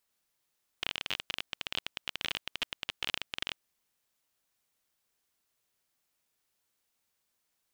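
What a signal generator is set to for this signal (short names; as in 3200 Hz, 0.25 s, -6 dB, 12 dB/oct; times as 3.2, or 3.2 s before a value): random clicks 26/s -15.5 dBFS 2.73 s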